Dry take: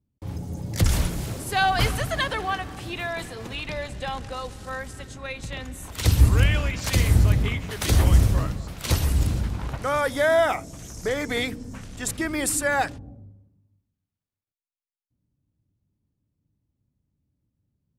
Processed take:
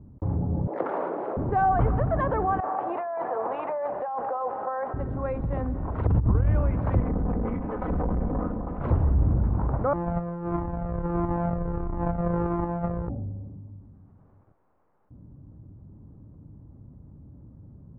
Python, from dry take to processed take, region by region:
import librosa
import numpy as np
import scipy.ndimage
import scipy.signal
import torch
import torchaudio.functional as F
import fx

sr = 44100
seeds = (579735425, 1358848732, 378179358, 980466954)

y = fx.chain(x, sr, fx.highpass(hz=390.0, slope=24),
    fx.high_shelf(hz=9000.0, db=-9.5), at=(0.67, 1.37))
y = fx.chain(y, sr, fx.highpass_res(hz=710.0, q=1.7),
    fx.high_shelf(hz=4000.0, db=-9.5),
    fx.over_compress(threshold_db=-36.0, ratio=-1.0), at=(2.6, 4.94))
y = fx.chain(y, sr, fx.notch(hz=2400.0, q=25.0),
    fx.over_compress(threshold_db=-20.0, ratio=-0.5), at=(6.06, 6.48))
y = fx.chain(y, sr, fx.lower_of_two(delay_ms=4.0),
    fx.bass_treble(bass_db=-4, treble_db=-7),
    fx.tube_stage(drive_db=28.0, bias=0.65), at=(7.0, 8.8))
y = fx.chain(y, sr, fx.sample_sort(block=256),
    fx.over_compress(threshold_db=-27.0, ratio=-0.5),
    fx.comb_cascade(direction='falling', hz=1.5), at=(9.93, 13.1))
y = scipy.signal.sosfilt(scipy.signal.butter(4, 1100.0, 'lowpass', fs=sr, output='sos'), y)
y = fx.env_flatten(y, sr, amount_pct=50)
y = F.gain(torch.from_numpy(y), -1.5).numpy()